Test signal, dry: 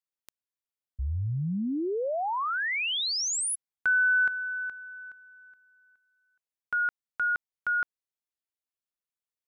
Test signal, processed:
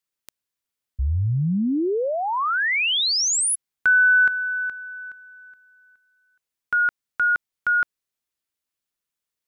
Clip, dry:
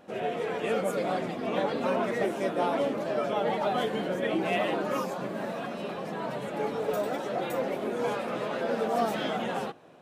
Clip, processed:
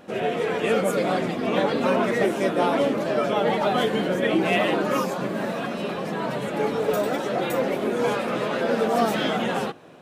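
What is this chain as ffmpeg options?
-af "equalizer=f=730:w=1.3:g=-3.5,volume=2.51"

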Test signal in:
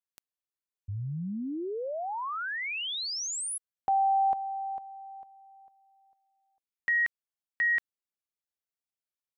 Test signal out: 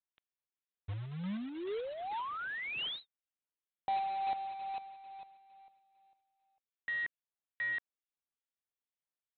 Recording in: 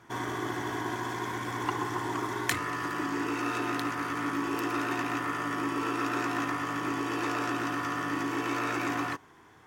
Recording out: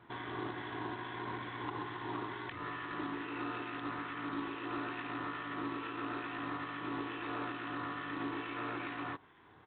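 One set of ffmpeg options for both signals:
-filter_complex "[0:a]acompressor=threshold=0.0398:ratio=4:attack=0.15:release=180:knee=6:detection=rms,acrossover=split=1600[s0][s1];[s0]aeval=exprs='val(0)*(1-0.5/2+0.5/2*cos(2*PI*2.3*n/s))':c=same[s2];[s1]aeval=exprs='val(0)*(1-0.5/2-0.5/2*cos(2*PI*2.3*n/s))':c=same[s3];[s2][s3]amix=inputs=2:normalize=0,aresample=8000,acrusher=bits=3:mode=log:mix=0:aa=0.000001,aresample=44100,volume=0.75"

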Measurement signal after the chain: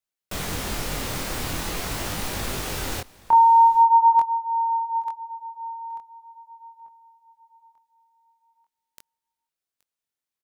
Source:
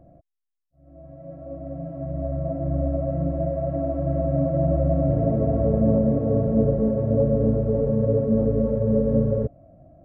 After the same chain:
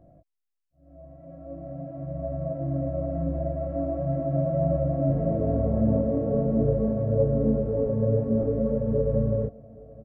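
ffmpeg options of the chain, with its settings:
-af "flanger=delay=19.5:depth=6.9:speed=0.43,aecho=1:1:823:0.075"

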